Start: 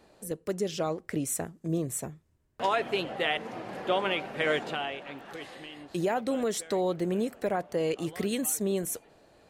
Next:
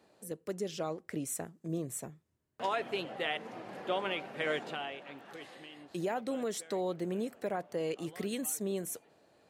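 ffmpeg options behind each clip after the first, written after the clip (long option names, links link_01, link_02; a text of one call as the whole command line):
ffmpeg -i in.wav -af "highpass=110,volume=-6dB" out.wav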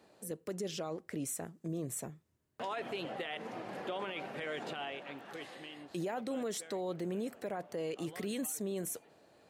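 ffmpeg -i in.wav -af "alimiter=level_in=7.5dB:limit=-24dB:level=0:latency=1:release=43,volume=-7.5dB,volume=2dB" out.wav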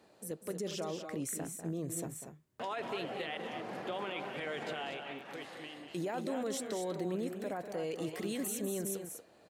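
ffmpeg -i in.wav -af "aecho=1:1:195.3|236.2:0.316|0.398" out.wav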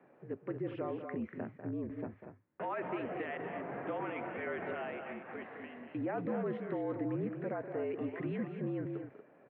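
ffmpeg -i in.wav -af "highpass=frequency=190:width_type=q:width=0.5412,highpass=frequency=190:width_type=q:width=1.307,lowpass=frequency=2300:width_type=q:width=0.5176,lowpass=frequency=2300:width_type=q:width=0.7071,lowpass=frequency=2300:width_type=q:width=1.932,afreqshift=-52,volume=1dB" out.wav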